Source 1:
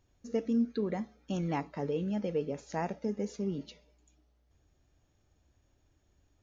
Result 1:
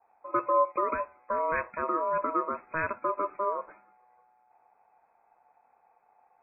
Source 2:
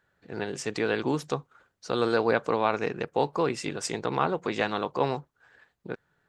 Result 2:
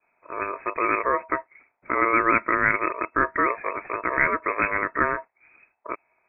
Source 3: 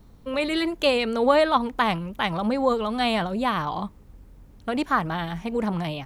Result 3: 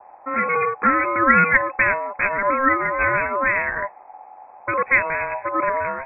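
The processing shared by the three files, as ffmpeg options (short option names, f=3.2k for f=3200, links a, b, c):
-af "aeval=exprs='val(0)*sin(2*PI*1800*n/s)':c=same,adynamicequalizer=threshold=0.00398:dfrequency=430:dqfactor=1.4:tfrequency=430:tqfactor=1.4:attack=5:release=100:ratio=0.375:range=4:mode=boostabove:tftype=bell,lowpass=f=2.2k:t=q:w=0.5098,lowpass=f=2.2k:t=q:w=0.6013,lowpass=f=2.2k:t=q:w=0.9,lowpass=f=2.2k:t=q:w=2.563,afreqshift=-2600,volume=7.5dB"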